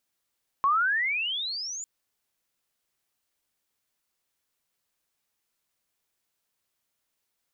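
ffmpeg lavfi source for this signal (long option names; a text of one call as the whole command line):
ffmpeg -f lavfi -i "aevalsrc='pow(10,(-19-14.5*t/1.2)/20)*sin(2*PI*1070*1.2/(33*log(2)/12)*(exp(33*log(2)/12*t/1.2)-1))':duration=1.2:sample_rate=44100" out.wav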